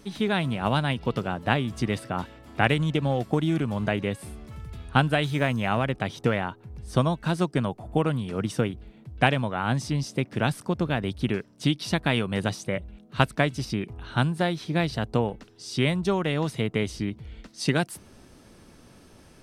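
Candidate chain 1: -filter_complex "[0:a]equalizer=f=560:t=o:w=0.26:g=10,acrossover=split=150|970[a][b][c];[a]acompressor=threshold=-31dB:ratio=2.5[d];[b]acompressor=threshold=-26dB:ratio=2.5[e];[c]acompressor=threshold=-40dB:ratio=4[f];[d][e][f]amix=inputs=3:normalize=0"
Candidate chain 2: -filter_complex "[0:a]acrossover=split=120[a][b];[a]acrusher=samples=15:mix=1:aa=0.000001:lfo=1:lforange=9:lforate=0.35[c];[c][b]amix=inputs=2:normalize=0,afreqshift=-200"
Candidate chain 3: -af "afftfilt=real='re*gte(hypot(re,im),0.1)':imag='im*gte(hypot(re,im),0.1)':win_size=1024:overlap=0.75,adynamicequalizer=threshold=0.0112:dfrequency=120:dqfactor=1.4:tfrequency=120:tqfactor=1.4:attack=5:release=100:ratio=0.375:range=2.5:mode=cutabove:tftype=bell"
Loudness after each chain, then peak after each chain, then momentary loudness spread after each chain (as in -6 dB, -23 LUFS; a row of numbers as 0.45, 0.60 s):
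-29.5, -28.5, -28.0 LUFS; -10.5, -3.5, -2.5 dBFS; 7, 10, 10 LU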